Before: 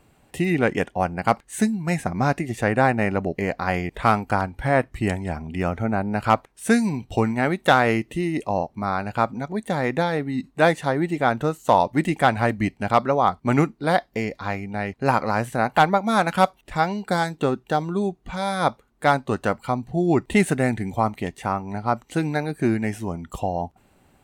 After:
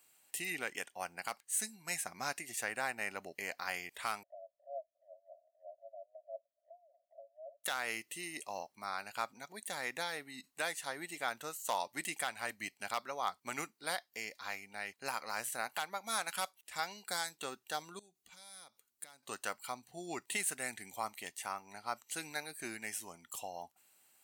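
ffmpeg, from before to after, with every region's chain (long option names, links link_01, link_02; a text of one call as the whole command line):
ffmpeg -i in.wav -filter_complex "[0:a]asettb=1/sr,asplit=3[link_01][link_02][link_03];[link_01]atrim=end=4.234[link_04];[link_02]atrim=start=4.23:end=7.64,asetpts=PTS-STARTPTS,afade=type=in:duration=0.004:curve=qsin,afade=type=out:start_time=3.406:duration=0.004:curve=qsin,asuperpass=centerf=620:order=12:qfactor=4.3,acompressor=mode=upward:threshold=-43dB:ratio=2.5:attack=3.2:release=140:knee=2.83:detection=peak[link_05];[link_03]atrim=start=7.636[link_06];[link_04][link_05]acrossfade=duration=0.004:curve1=hsin:curve2=qsin[link_07];[link_07][link_06]acrossfade=duration=0.004:curve1=qsin:curve2=hsin,asettb=1/sr,asplit=3[link_08][link_09][link_10];[link_08]atrim=end=17.994[link_11];[link_09]atrim=start=17.99:end=19.23,asetpts=PTS-STARTPTS,afade=type=in:duration=0.004:curve=qsin,afade=type=out:start_time=1.236:duration=0.004:curve=qsin,equalizer=frequency=1100:width_type=o:width=2.6:gain=-7.5,acompressor=threshold=-37dB:ratio=12:attack=3.2:release=140:knee=1:detection=peak[link_12];[link_10]atrim=start=19.226[link_13];[link_11][link_12]acrossfade=duration=0.004:curve1=hsin:curve2=qsin[link_14];[link_14][link_13]acrossfade=duration=0.004:curve1=qsin:curve2=hsin,aderivative,bandreject=frequency=3600:width=27,alimiter=limit=-23.5dB:level=0:latency=1:release=350,volume=1.5dB" out.wav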